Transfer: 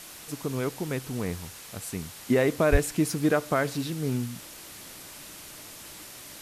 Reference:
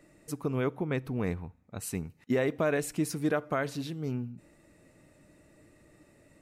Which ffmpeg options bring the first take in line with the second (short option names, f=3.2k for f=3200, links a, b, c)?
-filter_complex "[0:a]asplit=3[a][b][c];[a]afade=t=out:st=2.71:d=0.02[d];[b]highpass=f=140:w=0.5412,highpass=f=140:w=1.3066,afade=t=in:st=2.71:d=0.02,afade=t=out:st=2.83:d=0.02[e];[c]afade=t=in:st=2.83:d=0.02[f];[d][e][f]amix=inputs=3:normalize=0,afwtdn=0.0071,asetnsamples=n=441:p=0,asendcmd='2.13 volume volume -5dB',volume=0dB"